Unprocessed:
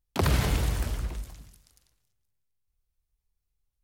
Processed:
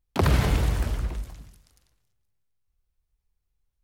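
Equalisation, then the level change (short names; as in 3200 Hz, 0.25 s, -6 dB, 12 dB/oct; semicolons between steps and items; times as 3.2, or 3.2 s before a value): high shelf 3500 Hz -6.5 dB; +3.5 dB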